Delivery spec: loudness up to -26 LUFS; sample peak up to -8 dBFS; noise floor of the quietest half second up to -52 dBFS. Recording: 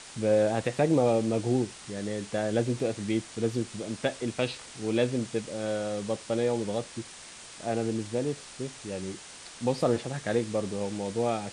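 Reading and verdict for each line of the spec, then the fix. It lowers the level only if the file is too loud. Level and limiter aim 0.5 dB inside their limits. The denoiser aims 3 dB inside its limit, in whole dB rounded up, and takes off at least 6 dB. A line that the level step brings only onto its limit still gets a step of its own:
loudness -30.0 LUFS: pass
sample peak -12.0 dBFS: pass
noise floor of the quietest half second -46 dBFS: fail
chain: noise reduction 9 dB, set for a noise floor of -46 dBFS

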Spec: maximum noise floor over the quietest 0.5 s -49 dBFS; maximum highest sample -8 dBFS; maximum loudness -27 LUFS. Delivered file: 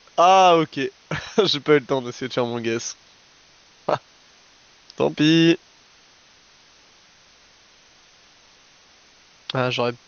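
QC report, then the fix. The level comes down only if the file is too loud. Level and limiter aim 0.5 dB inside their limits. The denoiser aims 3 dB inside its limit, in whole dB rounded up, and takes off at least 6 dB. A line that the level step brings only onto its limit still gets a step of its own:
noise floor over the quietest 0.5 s -54 dBFS: pass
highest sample -5.0 dBFS: fail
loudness -20.5 LUFS: fail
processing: trim -7 dB

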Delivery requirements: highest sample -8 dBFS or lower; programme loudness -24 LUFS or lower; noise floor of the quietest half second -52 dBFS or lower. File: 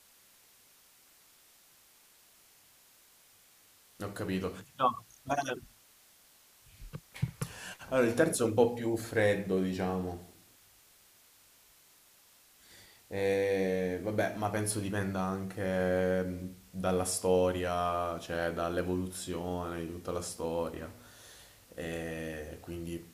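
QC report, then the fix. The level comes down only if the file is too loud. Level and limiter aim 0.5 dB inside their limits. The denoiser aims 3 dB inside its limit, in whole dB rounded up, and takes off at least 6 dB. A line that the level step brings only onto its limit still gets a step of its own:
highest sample -11.0 dBFS: pass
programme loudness -33.0 LUFS: pass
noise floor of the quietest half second -62 dBFS: pass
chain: none needed

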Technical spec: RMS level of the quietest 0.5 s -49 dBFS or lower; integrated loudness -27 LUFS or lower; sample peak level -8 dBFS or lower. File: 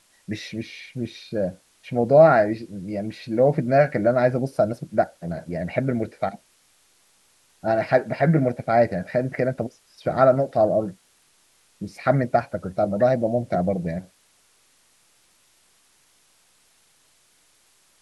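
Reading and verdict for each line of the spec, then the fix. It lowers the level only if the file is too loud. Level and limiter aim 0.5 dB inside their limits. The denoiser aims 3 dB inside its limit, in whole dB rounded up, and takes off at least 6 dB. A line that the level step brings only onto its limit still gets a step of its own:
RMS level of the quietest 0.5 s -61 dBFS: pass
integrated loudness -22.5 LUFS: fail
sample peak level -3.5 dBFS: fail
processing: trim -5 dB

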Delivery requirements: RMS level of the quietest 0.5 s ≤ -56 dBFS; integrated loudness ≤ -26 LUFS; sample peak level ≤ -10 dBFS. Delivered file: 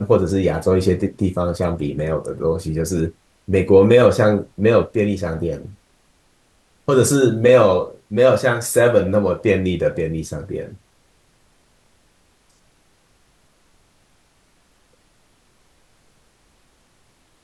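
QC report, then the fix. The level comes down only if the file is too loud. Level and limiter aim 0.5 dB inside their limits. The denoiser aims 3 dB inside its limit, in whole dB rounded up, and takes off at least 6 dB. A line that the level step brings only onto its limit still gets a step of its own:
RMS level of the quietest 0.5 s -59 dBFS: pass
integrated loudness -17.5 LUFS: fail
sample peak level -2.5 dBFS: fail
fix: trim -9 dB

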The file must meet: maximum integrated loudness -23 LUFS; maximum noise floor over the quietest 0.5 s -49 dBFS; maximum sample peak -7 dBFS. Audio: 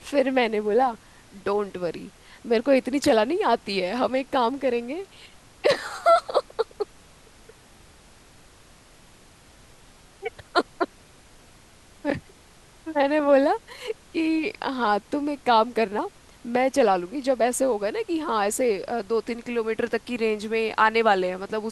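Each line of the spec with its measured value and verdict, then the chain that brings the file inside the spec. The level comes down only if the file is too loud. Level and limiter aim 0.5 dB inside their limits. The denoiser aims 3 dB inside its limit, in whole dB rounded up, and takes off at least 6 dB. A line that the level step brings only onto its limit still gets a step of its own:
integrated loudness -24.0 LUFS: pass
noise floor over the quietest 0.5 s -52 dBFS: pass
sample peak -6.5 dBFS: fail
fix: peak limiter -7.5 dBFS

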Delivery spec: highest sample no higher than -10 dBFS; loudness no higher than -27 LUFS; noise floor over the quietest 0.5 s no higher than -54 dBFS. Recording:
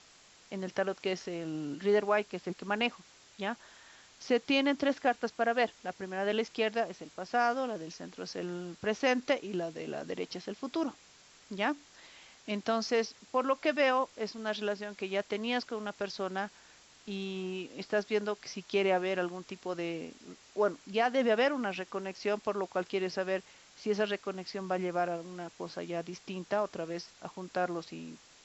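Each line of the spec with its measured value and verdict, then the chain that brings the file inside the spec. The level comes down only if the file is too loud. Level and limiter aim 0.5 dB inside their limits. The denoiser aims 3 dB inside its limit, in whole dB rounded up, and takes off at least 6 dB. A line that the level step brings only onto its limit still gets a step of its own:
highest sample -15.0 dBFS: pass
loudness -33.5 LUFS: pass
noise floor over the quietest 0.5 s -59 dBFS: pass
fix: none needed

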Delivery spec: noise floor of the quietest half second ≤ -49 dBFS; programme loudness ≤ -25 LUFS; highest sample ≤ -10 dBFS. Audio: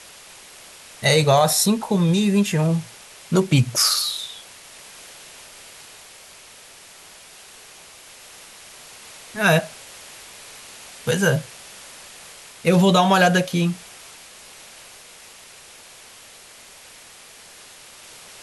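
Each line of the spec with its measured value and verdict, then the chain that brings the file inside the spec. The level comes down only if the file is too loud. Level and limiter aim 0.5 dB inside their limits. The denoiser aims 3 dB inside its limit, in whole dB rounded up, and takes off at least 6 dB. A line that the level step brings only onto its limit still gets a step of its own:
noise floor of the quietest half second -45 dBFS: fail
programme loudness -19.0 LUFS: fail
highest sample -5.5 dBFS: fail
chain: trim -6.5 dB

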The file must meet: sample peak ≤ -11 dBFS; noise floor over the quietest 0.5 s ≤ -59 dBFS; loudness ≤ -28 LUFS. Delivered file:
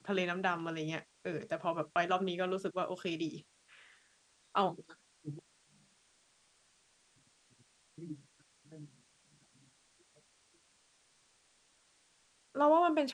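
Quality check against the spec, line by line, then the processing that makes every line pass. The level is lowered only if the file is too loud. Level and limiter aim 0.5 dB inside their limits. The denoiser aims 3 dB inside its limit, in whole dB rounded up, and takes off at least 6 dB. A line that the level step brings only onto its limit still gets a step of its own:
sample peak -16.5 dBFS: pass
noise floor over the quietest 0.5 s -70 dBFS: pass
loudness -35.0 LUFS: pass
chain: none needed

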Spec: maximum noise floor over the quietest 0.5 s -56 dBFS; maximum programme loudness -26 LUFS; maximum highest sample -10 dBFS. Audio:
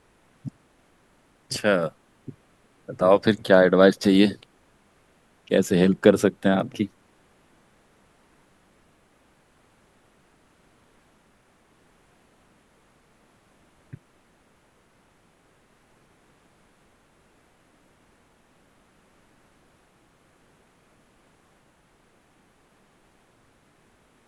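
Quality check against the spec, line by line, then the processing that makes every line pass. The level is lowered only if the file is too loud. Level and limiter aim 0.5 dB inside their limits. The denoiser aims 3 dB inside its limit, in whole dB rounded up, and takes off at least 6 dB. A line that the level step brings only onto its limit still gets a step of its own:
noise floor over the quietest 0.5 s -61 dBFS: pass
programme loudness -20.5 LUFS: fail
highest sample -2.0 dBFS: fail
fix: trim -6 dB; peak limiter -10.5 dBFS

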